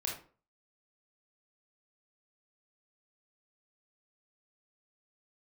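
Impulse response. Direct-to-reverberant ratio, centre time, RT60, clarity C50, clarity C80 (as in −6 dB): −2.0 dB, 32 ms, 0.40 s, 5.0 dB, 11.0 dB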